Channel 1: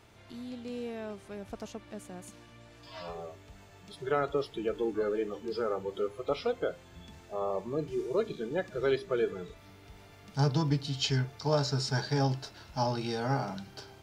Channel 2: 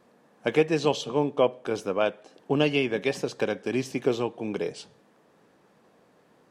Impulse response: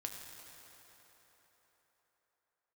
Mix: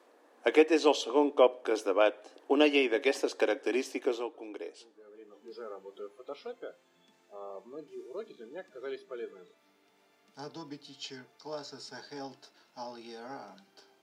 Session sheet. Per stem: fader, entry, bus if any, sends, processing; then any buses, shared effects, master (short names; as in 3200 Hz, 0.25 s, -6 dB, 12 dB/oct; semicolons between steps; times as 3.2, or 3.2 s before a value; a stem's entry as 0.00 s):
-11.0 dB, 0.00 s, no send, HPF 230 Hz 24 dB/oct; auto duck -20 dB, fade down 0.25 s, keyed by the second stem
3.73 s 0 dB -> 4.52 s -10.5 dB, 0.00 s, no send, elliptic high-pass 290 Hz, stop band 50 dB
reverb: off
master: dry